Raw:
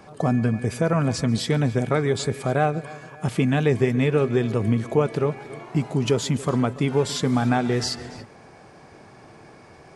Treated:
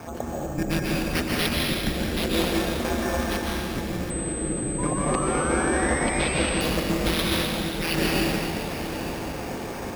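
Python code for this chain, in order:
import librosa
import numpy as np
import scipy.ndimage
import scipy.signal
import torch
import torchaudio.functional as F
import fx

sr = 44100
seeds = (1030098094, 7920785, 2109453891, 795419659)

y = scipy.signal.sosfilt(scipy.signal.butter(4, 140.0, 'highpass', fs=sr, output='sos'), x)
y = fx.low_shelf(y, sr, hz=420.0, db=7.0)
y = fx.over_compress(y, sr, threshold_db=-30.0, ratio=-1.0)
y = y * np.sin(2.0 * np.pi * 82.0 * np.arange(len(y)) / sr)
y = fx.spec_paint(y, sr, seeds[0], shape='rise', start_s=4.78, length_s=1.72, low_hz=970.0, high_hz=3000.0, level_db=-36.0)
y = fx.echo_diffused(y, sr, ms=910, feedback_pct=45, wet_db=-12.0)
y = fx.rev_plate(y, sr, seeds[1], rt60_s=2.4, hf_ratio=0.95, predelay_ms=115, drr_db=-4.0)
y = np.repeat(y[::6], 6)[:len(y)]
y = fx.pwm(y, sr, carrier_hz=8200.0, at=(4.1, 6.61))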